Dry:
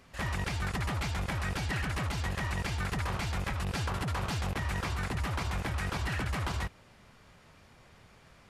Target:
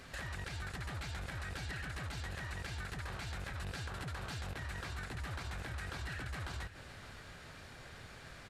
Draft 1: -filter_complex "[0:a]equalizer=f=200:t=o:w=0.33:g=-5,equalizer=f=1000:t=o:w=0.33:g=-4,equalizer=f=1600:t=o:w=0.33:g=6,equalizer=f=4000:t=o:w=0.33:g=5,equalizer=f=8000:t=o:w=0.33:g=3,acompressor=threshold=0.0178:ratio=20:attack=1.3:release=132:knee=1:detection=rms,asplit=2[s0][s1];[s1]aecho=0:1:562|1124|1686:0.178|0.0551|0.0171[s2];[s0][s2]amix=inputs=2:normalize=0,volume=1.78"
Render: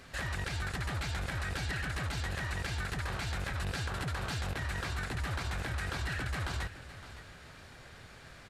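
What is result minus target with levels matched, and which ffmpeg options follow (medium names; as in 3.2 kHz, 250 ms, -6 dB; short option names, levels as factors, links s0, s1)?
compression: peak gain reduction -6.5 dB
-filter_complex "[0:a]equalizer=f=200:t=o:w=0.33:g=-5,equalizer=f=1000:t=o:w=0.33:g=-4,equalizer=f=1600:t=o:w=0.33:g=6,equalizer=f=4000:t=o:w=0.33:g=5,equalizer=f=8000:t=o:w=0.33:g=3,acompressor=threshold=0.00794:ratio=20:attack=1.3:release=132:knee=1:detection=rms,asplit=2[s0][s1];[s1]aecho=0:1:562|1124|1686:0.178|0.0551|0.0171[s2];[s0][s2]amix=inputs=2:normalize=0,volume=1.78"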